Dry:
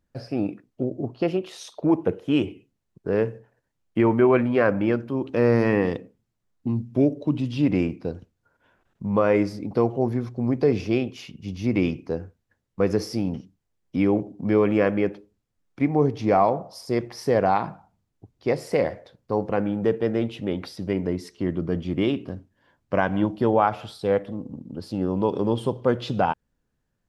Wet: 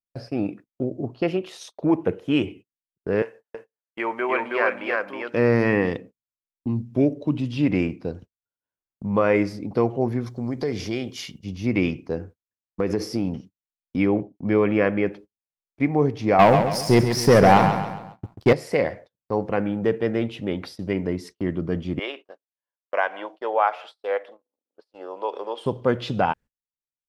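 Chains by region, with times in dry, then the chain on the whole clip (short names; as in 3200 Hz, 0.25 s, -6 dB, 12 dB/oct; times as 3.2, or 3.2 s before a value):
3.22–5.34 HPF 650 Hz + echo 0.32 s -3 dB
10.26–11.44 high shelf 2600 Hz +10.5 dB + notch 2600 Hz, Q 5.5 + compressor 2:1, threshold -26 dBFS
12.17–13.24 bell 330 Hz +4.5 dB 1.3 oct + compressor 5:1, threshold -18 dBFS
14.06–15.07 expander -33 dBFS + air absorption 88 m
16.39–18.53 tone controls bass +7 dB, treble +6 dB + sample leveller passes 2 + feedback echo 0.136 s, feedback 44%, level -8 dB
21.99–25.66 HPF 510 Hz 24 dB/oct + high shelf 6700 Hz -11 dB
whole clip: gate -41 dBFS, range -34 dB; dynamic EQ 2100 Hz, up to +5 dB, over -43 dBFS, Q 1.4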